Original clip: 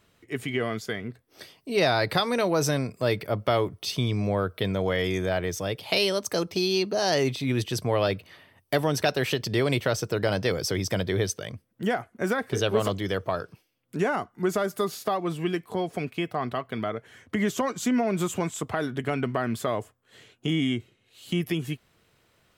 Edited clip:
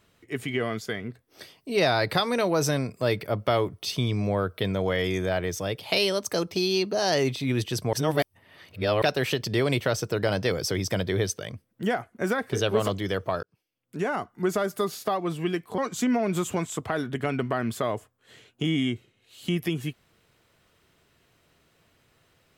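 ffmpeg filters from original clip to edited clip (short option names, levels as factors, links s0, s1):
-filter_complex "[0:a]asplit=5[s0][s1][s2][s3][s4];[s0]atrim=end=7.932[s5];[s1]atrim=start=7.928:end=9.022,asetpts=PTS-STARTPTS,areverse[s6];[s2]atrim=start=9.018:end=13.43,asetpts=PTS-STARTPTS,afade=t=out:st=4.408:d=0.004:c=hsin[s7];[s3]atrim=start=13.43:end=15.782,asetpts=PTS-STARTPTS,afade=t=in:d=0.84[s8];[s4]atrim=start=17.618[s9];[s5][s6]acrossfade=d=0.004:c1=hsin:c2=hsin[s10];[s7][s8]concat=n=2:v=0:a=1[s11];[s10][s11]acrossfade=d=0.004:c1=hsin:c2=hsin[s12];[s12][s9]acrossfade=d=0.004:c1=hsin:c2=hsin"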